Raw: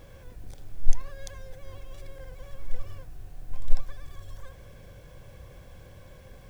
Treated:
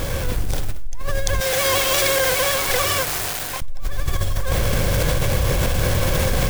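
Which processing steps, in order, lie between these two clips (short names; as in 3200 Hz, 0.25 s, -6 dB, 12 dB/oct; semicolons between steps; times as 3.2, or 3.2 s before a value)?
bit-crush 9-bit; AGC gain up to 11.5 dB; 1.4–3.62 HPF 1100 Hz 6 dB/oct; fast leveller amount 100%; gain -15.5 dB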